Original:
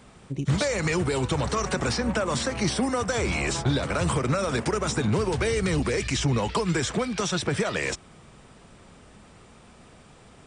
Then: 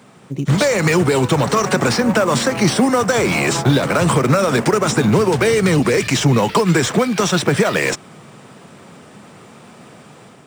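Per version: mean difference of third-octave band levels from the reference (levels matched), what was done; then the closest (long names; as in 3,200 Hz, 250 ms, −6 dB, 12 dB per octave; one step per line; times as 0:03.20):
3.0 dB: automatic gain control gain up to 5 dB
high-pass filter 120 Hz 24 dB per octave
in parallel at −9.5 dB: sample-rate reduction 6,700 Hz, jitter 20%
on the sum: level +3.5 dB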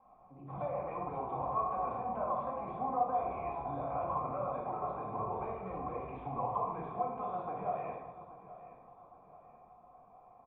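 13.0 dB: formant resonators in series a
repeating echo 826 ms, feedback 40%, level −16 dB
rectangular room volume 450 cubic metres, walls mixed, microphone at 2.1 metres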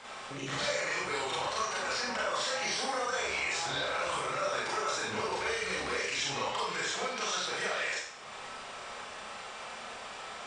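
9.0 dB: three-way crossover with the lows and the highs turned down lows −23 dB, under 540 Hz, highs −23 dB, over 7,600 Hz
downward compressor 3 to 1, threshold −49 dBFS, peak gain reduction 18 dB
four-comb reverb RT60 0.65 s, combs from 29 ms, DRR −6.5 dB
level +6 dB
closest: first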